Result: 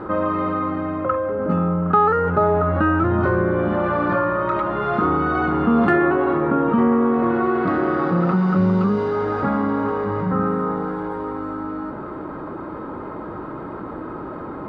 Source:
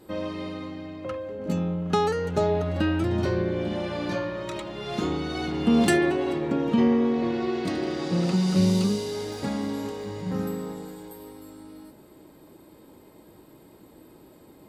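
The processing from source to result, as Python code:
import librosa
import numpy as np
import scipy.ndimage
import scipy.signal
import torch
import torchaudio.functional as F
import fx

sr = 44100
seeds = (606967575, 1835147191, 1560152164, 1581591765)

y = fx.lowpass_res(x, sr, hz=1300.0, q=5.3)
y = fx.env_flatten(y, sr, amount_pct=50)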